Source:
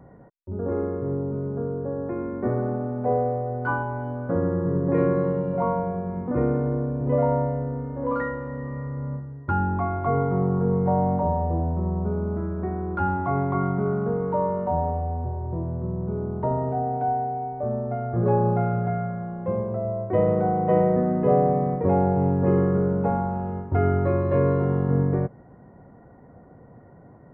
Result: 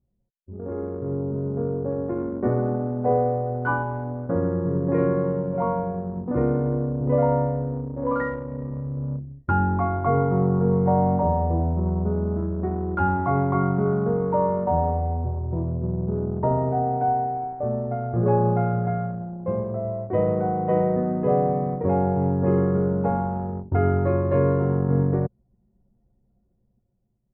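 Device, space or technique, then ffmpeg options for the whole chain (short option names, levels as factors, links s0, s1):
voice memo with heavy noise removal: -af "anlmdn=39.8,dynaudnorm=f=250:g=9:m=3.55,volume=0.447"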